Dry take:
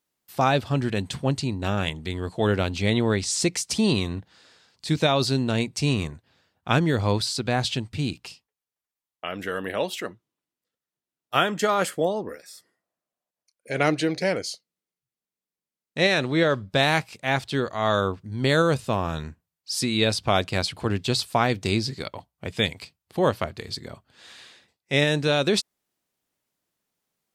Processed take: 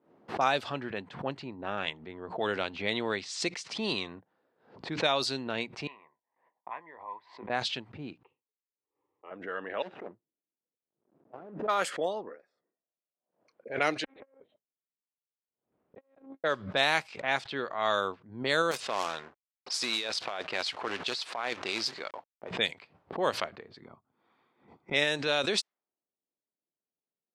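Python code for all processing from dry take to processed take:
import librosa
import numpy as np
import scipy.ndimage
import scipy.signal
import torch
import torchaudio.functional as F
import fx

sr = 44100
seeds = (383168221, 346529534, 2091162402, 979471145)

y = fx.chain(x, sr, fx.doubler(ms=19.0, db=-12.5),
    fx.gate_hold(open_db=-52.0, close_db=-55.0, hold_ms=71.0, range_db=-21, attack_ms=1.4, release_ms=100.0),
    fx.double_bandpass(hz=1400.0, octaves=0.96), at=(5.87, 7.5))
y = fx.chain(y, sr, fx.air_absorb(metres=190.0),
    fx.fixed_phaser(hz=1000.0, stages=8), at=(8.23, 9.31))
y = fx.chain(y, sr, fx.median_filter(points=41),
    fx.notch(hz=4300.0, q=25.0),
    fx.over_compress(threshold_db=-35.0, ratio=-1.0), at=(9.82, 11.68))
y = fx.chain(y, sr, fx.lpc_monotone(seeds[0], pitch_hz=270.0, order=10),
    fx.transformer_sat(knee_hz=330.0), at=(14.04, 16.44))
y = fx.chain(y, sr, fx.quant_companded(bits=4),
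    fx.bass_treble(bass_db=-10, treble_db=4),
    fx.over_compress(threshold_db=-26.0, ratio=-1.0), at=(18.71, 22.51))
y = fx.chain(y, sr, fx.highpass(hz=47.0, slope=12),
    fx.comb(ms=0.9, depth=0.61), at=(23.81, 24.94))
y = fx.weighting(y, sr, curve='A')
y = fx.env_lowpass(y, sr, base_hz=430.0, full_db=-19.5)
y = fx.pre_swell(y, sr, db_per_s=120.0)
y = y * 10.0 ** (-4.5 / 20.0)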